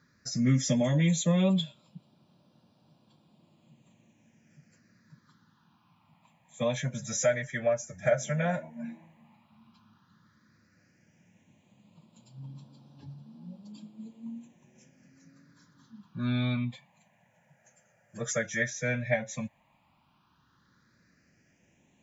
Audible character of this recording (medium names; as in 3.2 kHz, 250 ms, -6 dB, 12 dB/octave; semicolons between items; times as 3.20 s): phasing stages 6, 0.096 Hz, lowest notch 280–1900 Hz